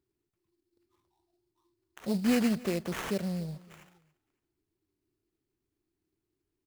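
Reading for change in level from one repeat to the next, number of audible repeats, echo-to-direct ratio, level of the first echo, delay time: −10.5 dB, 2, −21.5 dB, −22.0 dB, 281 ms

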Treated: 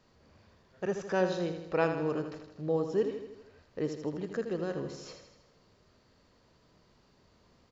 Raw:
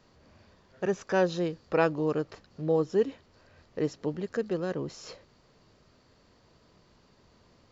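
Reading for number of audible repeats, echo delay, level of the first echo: 6, 80 ms, −8.0 dB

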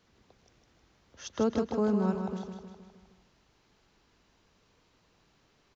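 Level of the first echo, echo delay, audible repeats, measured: −6.5 dB, 156 ms, 6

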